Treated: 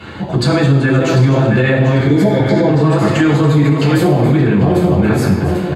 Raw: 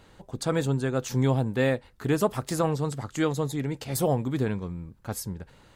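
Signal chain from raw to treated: backward echo that repeats 398 ms, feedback 47%, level -6.5 dB; 1.98–2.66 s: spectral replace 1–3.4 kHz before; 2.23–2.72 s: distance through air 120 m; delay 279 ms -18 dB; compression 2.5:1, threshold -37 dBFS, peak gain reduction 12.5 dB; reverberation RT60 0.85 s, pre-delay 3 ms, DRR -9.5 dB; peak limiter -11 dBFS, peak gain reduction 7.5 dB; treble shelf 11 kHz -7.5 dB; trim +7.5 dB

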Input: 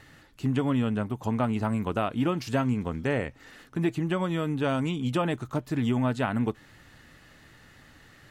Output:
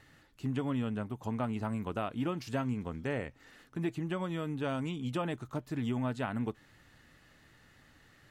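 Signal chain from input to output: trim -7.5 dB

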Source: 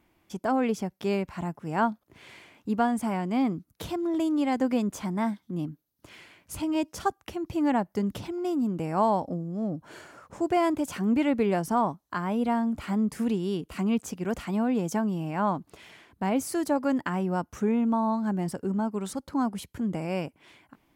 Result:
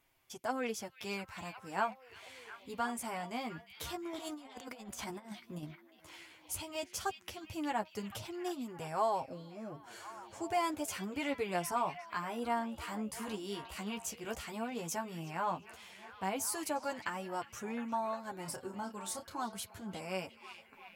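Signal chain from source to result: treble shelf 3.3 kHz +8.5 dB; flange 0.11 Hz, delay 7.3 ms, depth 7.4 ms, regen +7%; peaking EQ 230 Hz -10.5 dB 1.5 oct; 4.13–5.63 s: compressor with a negative ratio -41 dBFS, ratio -0.5; 18.42–19.42 s: doubling 30 ms -7 dB; repeats whose band climbs or falls 355 ms, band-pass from 3.2 kHz, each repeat -0.7 oct, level -7.5 dB; trim -3.5 dB

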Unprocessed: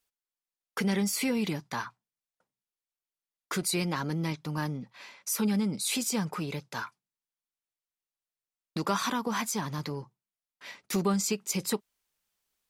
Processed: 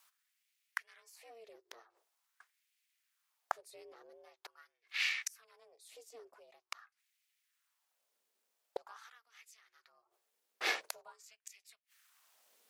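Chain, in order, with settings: inverted gate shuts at -30 dBFS, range -39 dB; ring modulator 230 Hz; LFO high-pass sine 0.45 Hz 410–2300 Hz; trim +13.5 dB

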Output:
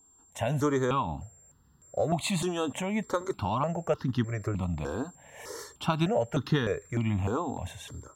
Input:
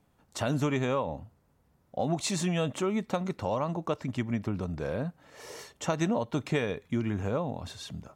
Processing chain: whistle 7.4 kHz -58 dBFS; level rider gain up to 5.5 dB; stepped phaser 3.3 Hz 580–2300 Hz

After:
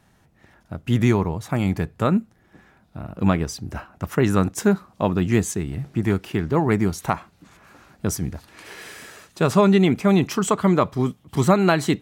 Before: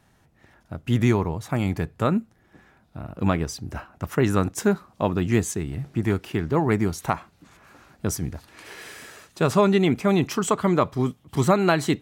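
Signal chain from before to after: peaking EQ 190 Hz +4 dB 0.2 oct; trim +1.5 dB

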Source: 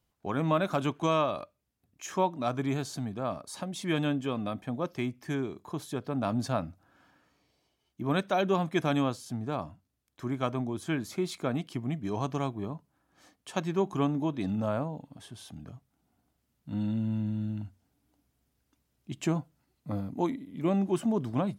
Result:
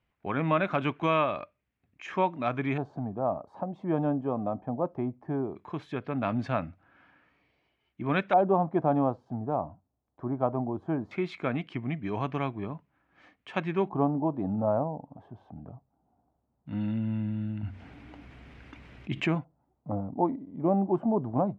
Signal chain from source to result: LFO low-pass square 0.18 Hz 810–2300 Hz; 17.63–19.35 s: level flattener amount 50%

